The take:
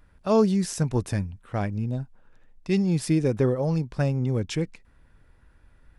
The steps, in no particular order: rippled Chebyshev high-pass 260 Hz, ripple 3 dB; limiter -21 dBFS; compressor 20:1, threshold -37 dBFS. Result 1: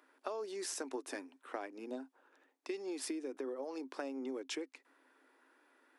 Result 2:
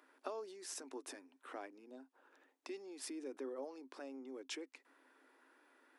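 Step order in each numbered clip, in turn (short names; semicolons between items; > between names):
rippled Chebyshev high-pass > limiter > compressor; limiter > compressor > rippled Chebyshev high-pass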